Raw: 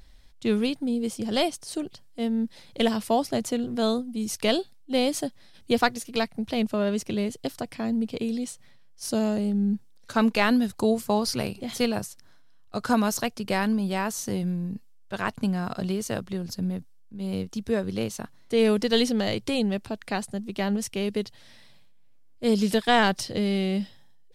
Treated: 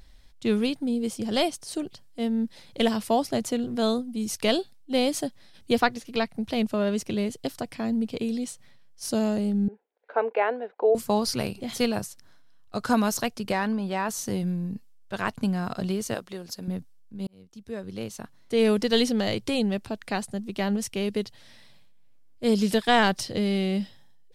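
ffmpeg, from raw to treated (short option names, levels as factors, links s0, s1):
-filter_complex "[0:a]asettb=1/sr,asplit=3[s0][s1][s2];[s0]atrim=end=5.804[s3];[s1]atrim=start=5.8:end=6.38,asetpts=PTS-STARTPTS,afade=t=in:d=0.004:c=qsin,afade=t=out:st=0.576:d=0.004:c=qsin,acrossover=split=4800[s4][s5];[s5]acompressor=threshold=0.00316:ratio=4:attack=1:release=60[s6];[s4][s6]amix=inputs=2:normalize=0[s7];[s2]atrim=start=6.376[s8];[s3][s7]acrossfade=d=0.004:c1=hsin:c2=qsin[s9];[s9][s8]acrossfade=d=0.004:c1=qsin:c2=hsin,asettb=1/sr,asplit=3[s10][s11][s12];[s10]atrim=end=9.684[s13];[s11]atrim=start=9.68:end=10.95,asetpts=PTS-STARTPTS,afade=t=in:d=0.004:c=qsin,afade=t=out:st=1.266:d=0.004:c=qsin,highpass=f=440:w=0.5412,highpass=f=440:w=1.3066,equalizer=f=450:t=q:w=4:g=8,equalizer=f=750:t=q:w=4:g=4,equalizer=f=1200:t=q:w=4:g=-8,equalizer=f=1800:t=q:w=4:g=-4,lowpass=f=2000:w=0.5412,lowpass=f=2000:w=1.3066[s14];[s12]atrim=start=10.946[s15];[s13][s14]acrossfade=d=0.004:c1=hsin:c2=qsin[s16];[s16][s15]acrossfade=d=0.004:c1=qsin:c2=hsin,asettb=1/sr,asplit=3[s17][s18][s19];[s17]atrim=end=13.524[s20];[s18]atrim=start=13.52:end=14.09,asetpts=PTS-STARTPTS,afade=t=in:d=0.004:c=qsin,afade=t=out:st=0.566:d=0.004:c=qsin,asplit=2[s21][s22];[s22]highpass=f=720:p=1,volume=2.82,asoftclip=type=tanh:threshold=0.211[s23];[s21][s23]amix=inputs=2:normalize=0,lowpass=f=1700:p=1,volume=0.501[s24];[s19]atrim=start=14.086[s25];[s20][s24]acrossfade=d=0.004:c1=hsin:c2=qsin[s26];[s26][s25]acrossfade=d=0.004:c1=qsin:c2=hsin,asettb=1/sr,asplit=3[s27][s28][s29];[s27]atrim=end=16.144[s30];[s28]atrim=start=16.14:end=16.68,asetpts=PTS-STARTPTS,afade=t=in:d=0.004:c=qsin,afade=t=out:st=0.536:d=0.004:c=qsin,bass=f=250:g=-14,treble=f=4000:g=1[s31];[s29]atrim=start=16.676[s32];[s30][s31]acrossfade=d=0.004:c1=hsin:c2=qsin[s33];[s33][s32]acrossfade=d=0.004:c1=qsin:c2=hsin,asplit=2[s34][s35];[s34]atrim=end=17.27,asetpts=PTS-STARTPTS,afade=t=out:st=17.266:d=0.004:c=hsin[s36];[s35]atrim=start=17.27,asetpts=PTS-STARTPTS,afade=t=in:d=1.42[s37];[s36][s37]concat=n=2:v=0:a=1"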